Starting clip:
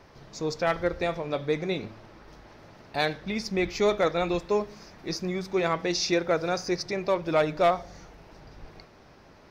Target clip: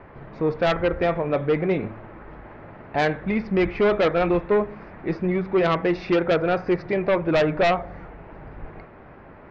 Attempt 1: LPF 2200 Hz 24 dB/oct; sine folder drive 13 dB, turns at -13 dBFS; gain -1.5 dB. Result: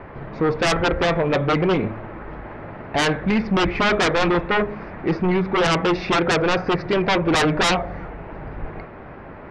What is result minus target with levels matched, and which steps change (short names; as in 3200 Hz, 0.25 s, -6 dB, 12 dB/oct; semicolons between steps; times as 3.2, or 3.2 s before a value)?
sine folder: distortion +15 dB
change: sine folder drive 6 dB, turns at -13 dBFS